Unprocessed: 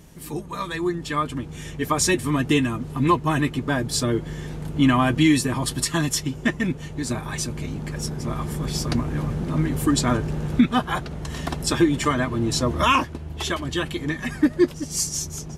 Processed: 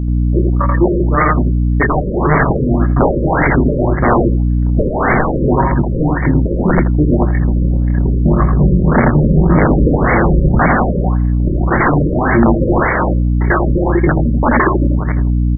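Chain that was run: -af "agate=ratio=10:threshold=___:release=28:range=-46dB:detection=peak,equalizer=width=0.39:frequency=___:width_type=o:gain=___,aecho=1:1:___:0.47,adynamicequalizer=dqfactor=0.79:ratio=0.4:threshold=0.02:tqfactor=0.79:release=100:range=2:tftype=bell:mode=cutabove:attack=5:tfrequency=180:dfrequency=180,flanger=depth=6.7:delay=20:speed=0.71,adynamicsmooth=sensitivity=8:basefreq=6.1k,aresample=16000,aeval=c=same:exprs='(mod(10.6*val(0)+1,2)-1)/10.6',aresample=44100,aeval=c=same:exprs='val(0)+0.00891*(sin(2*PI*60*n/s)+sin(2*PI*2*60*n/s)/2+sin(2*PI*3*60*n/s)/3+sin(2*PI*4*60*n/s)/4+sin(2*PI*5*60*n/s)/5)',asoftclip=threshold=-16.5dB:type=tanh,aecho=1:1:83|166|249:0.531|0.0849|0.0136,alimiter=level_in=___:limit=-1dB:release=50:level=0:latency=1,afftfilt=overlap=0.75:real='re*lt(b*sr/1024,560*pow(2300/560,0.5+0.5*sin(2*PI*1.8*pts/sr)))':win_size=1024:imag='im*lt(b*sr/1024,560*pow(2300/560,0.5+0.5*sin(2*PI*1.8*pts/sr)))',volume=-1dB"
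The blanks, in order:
-27dB, 1.8k, 5, 5.4, 26.5dB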